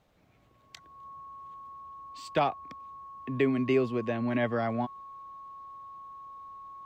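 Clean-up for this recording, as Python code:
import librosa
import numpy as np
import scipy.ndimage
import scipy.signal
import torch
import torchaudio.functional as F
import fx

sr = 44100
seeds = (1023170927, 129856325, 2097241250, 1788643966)

y = fx.notch(x, sr, hz=1100.0, q=30.0)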